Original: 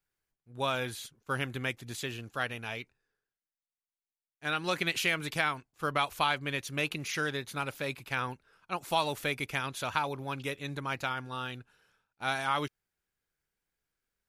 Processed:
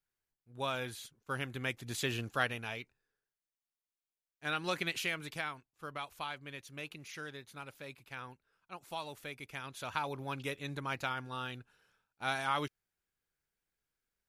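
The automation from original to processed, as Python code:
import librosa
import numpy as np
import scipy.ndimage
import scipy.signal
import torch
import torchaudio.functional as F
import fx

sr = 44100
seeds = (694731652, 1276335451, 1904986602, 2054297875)

y = fx.gain(x, sr, db=fx.line((1.51, -5.0), (2.2, 4.0), (2.76, -3.5), (4.66, -3.5), (5.88, -12.5), (9.41, -12.5), (10.18, -3.0)))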